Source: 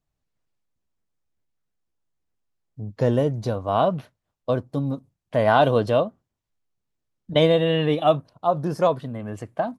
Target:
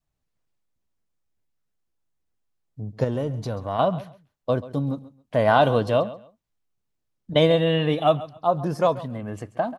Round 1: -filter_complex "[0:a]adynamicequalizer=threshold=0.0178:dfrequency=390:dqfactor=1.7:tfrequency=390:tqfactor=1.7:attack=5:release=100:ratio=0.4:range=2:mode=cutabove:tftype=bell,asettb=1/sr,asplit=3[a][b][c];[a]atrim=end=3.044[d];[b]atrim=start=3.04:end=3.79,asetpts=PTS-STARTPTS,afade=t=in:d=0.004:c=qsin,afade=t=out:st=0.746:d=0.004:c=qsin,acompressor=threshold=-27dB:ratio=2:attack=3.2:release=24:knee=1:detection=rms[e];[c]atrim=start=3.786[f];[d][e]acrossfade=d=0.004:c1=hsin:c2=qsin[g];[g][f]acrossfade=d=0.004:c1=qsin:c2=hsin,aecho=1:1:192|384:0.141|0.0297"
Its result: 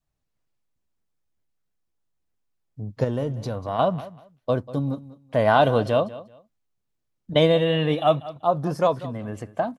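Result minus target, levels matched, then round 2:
echo 57 ms late
-filter_complex "[0:a]adynamicequalizer=threshold=0.0178:dfrequency=390:dqfactor=1.7:tfrequency=390:tqfactor=1.7:attack=5:release=100:ratio=0.4:range=2:mode=cutabove:tftype=bell,asettb=1/sr,asplit=3[a][b][c];[a]atrim=end=3.044[d];[b]atrim=start=3.04:end=3.79,asetpts=PTS-STARTPTS,afade=t=in:d=0.004:c=qsin,afade=t=out:st=0.746:d=0.004:c=qsin,acompressor=threshold=-27dB:ratio=2:attack=3.2:release=24:knee=1:detection=rms[e];[c]atrim=start=3.786[f];[d][e]acrossfade=d=0.004:c1=hsin:c2=qsin[g];[g][f]acrossfade=d=0.004:c1=qsin:c2=hsin,aecho=1:1:135|270:0.141|0.0297"

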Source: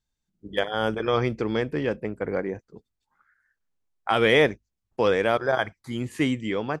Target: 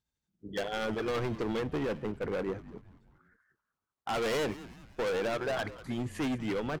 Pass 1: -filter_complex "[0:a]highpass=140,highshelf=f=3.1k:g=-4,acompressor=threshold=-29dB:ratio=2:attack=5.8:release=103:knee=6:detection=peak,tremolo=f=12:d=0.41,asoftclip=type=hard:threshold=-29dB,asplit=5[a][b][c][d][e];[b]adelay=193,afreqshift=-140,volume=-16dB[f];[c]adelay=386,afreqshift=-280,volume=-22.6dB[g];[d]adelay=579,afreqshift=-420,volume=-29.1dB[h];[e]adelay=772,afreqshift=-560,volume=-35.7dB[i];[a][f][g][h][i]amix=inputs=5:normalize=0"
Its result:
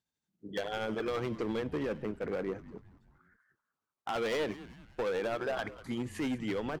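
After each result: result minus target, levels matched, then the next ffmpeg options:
compressor: peak gain reduction +8.5 dB; 125 Hz band -2.0 dB
-filter_complex "[0:a]highpass=140,highshelf=f=3.1k:g=-4,tremolo=f=12:d=0.41,asoftclip=type=hard:threshold=-29dB,asplit=5[a][b][c][d][e];[b]adelay=193,afreqshift=-140,volume=-16dB[f];[c]adelay=386,afreqshift=-280,volume=-22.6dB[g];[d]adelay=579,afreqshift=-420,volume=-29.1dB[h];[e]adelay=772,afreqshift=-560,volume=-35.7dB[i];[a][f][g][h][i]amix=inputs=5:normalize=0"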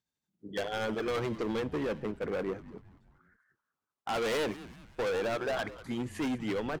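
125 Hz band -2.5 dB
-filter_complex "[0:a]highpass=53,highshelf=f=3.1k:g=-4,tremolo=f=12:d=0.41,asoftclip=type=hard:threshold=-29dB,asplit=5[a][b][c][d][e];[b]adelay=193,afreqshift=-140,volume=-16dB[f];[c]adelay=386,afreqshift=-280,volume=-22.6dB[g];[d]adelay=579,afreqshift=-420,volume=-29.1dB[h];[e]adelay=772,afreqshift=-560,volume=-35.7dB[i];[a][f][g][h][i]amix=inputs=5:normalize=0"

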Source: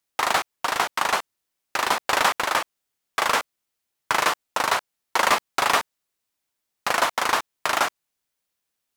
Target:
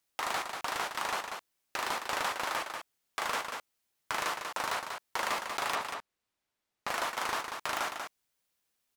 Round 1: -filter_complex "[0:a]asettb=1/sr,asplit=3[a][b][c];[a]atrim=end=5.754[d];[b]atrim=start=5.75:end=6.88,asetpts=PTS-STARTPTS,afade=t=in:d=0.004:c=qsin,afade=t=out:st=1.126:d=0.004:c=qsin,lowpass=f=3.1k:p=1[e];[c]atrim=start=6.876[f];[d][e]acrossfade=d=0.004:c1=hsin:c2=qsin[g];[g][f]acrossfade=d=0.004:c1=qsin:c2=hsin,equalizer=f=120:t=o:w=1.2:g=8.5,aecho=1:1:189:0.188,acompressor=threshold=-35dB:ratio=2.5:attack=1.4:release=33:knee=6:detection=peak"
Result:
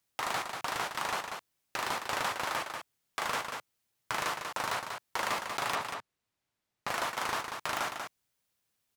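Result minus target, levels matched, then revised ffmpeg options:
125 Hz band +6.0 dB
-filter_complex "[0:a]asettb=1/sr,asplit=3[a][b][c];[a]atrim=end=5.754[d];[b]atrim=start=5.75:end=6.88,asetpts=PTS-STARTPTS,afade=t=in:d=0.004:c=qsin,afade=t=out:st=1.126:d=0.004:c=qsin,lowpass=f=3.1k:p=1[e];[c]atrim=start=6.876[f];[d][e]acrossfade=d=0.004:c1=hsin:c2=qsin[g];[g][f]acrossfade=d=0.004:c1=qsin:c2=hsin,aecho=1:1:189:0.188,acompressor=threshold=-35dB:ratio=2.5:attack=1.4:release=33:knee=6:detection=peak"

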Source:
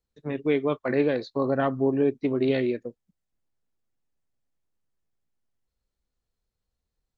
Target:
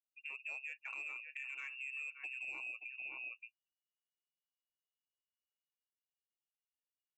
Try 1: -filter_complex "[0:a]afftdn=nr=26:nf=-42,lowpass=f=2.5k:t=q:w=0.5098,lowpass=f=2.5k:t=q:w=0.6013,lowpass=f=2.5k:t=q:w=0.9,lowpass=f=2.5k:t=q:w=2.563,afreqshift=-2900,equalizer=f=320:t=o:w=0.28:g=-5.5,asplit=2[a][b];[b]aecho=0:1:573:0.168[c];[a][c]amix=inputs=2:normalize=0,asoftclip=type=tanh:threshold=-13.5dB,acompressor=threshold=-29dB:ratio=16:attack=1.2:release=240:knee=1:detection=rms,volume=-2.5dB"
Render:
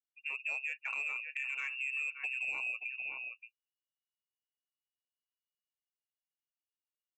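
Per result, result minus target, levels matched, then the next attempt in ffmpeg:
compressor: peak gain reduction -7.5 dB; 250 Hz band -7.0 dB
-filter_complex "[0:a]afftdn=nr=26:nf=-42,lowpass=f=2.5k:t=q:w=0.5098,lowpass=f=2.5k:t=q:w=0.6013,lowpass=f=2.5k:t=q:w=0.9,lowpass=f=2.5k:t=q:w=2.563,afreqshift=-2900,equalizer=f=320:t=o:w=0.28:g=-5.5,asplit=2[a][b];[b]aecho=0:1:573:0.168[c];[a][c]amix=inputs=2:normalize=0,asoftclip=type=tanh:threshold=-13.5dB,acompressor=threshold=-37dB:ratio=16:attack=1.2:release=240:knee=1:detection=rms,volume=-2.5dB"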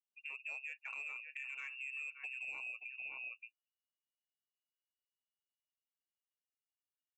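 250 Hz band -7.0 dB
-filter_complex "[0:a]afftdn=nr=26:nf=-42,lowpass=f=2.5k:t=q:w=0.5098,lowpass=f=2.5k:t=q:w=0.6013,lowpass=f=2.5k:t=q:w=0.9,lowpass=f=2.5k:t=q:w=2.563,afreqshift=-2900,equalizer=f=320:t=o:w=0.28:g=6,asplit=2[a][b];[b]aecho=0:1:573:0.168[c];[a][c]amix=inputs=2:normalize=0,asoftclip=type=tanh:threshold=-13.5dB,acompressor=threshold=-37dB:ratio=16:attack=1.2:release=240:knee=1:detection=rms,volume=-2.5dB"

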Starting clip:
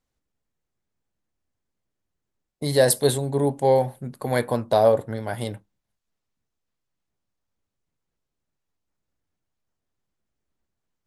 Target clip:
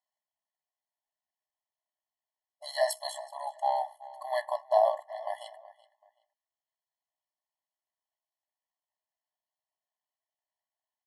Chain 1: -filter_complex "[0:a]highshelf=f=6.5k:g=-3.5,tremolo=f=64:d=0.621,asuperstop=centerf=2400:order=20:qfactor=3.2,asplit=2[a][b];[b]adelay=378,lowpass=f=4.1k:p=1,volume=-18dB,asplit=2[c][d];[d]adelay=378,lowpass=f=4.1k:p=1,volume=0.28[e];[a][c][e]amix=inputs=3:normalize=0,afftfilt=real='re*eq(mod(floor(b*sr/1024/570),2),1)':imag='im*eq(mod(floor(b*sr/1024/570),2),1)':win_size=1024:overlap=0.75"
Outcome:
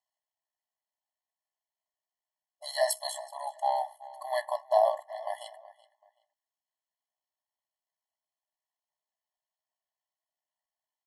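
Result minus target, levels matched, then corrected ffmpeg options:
8000 Hz band +4.5 dB
-filter_complex "[0:a]highshelf=f=6.5k:g=-10.5,tremolo=f=64:d=0.621,asuperstop=centerf=2400:order=20:qfactor=3.2,asplit=2[a][b];[b]adelay=378,lowpass=f=4.1k:p=1,volume=-18dB,asplit=2[c][d];[d]adelay=378,lowpass=f=4.1k:p=1,volume=0.28[e];[a][c][e]amix=inputs=3:normalize=0,afftfilt=real='re*eq(mod(floor(b*sr/1024/570),2),1)':imag='im*eq(mod(floor(b*sr/1024/570),2),1)':win_size=1024:overlap=0.75"

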